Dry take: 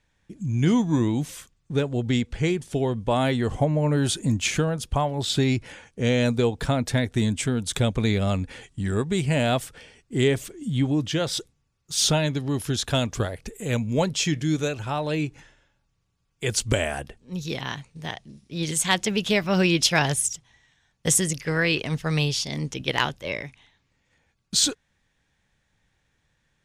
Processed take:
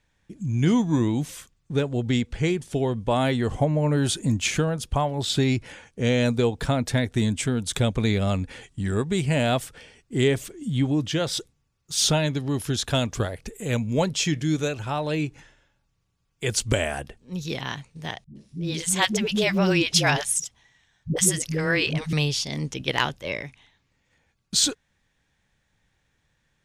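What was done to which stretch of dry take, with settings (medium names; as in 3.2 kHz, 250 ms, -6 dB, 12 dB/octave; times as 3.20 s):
18.24–22.13 s: phase dispersion highs, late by 115 ms, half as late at 310 Hz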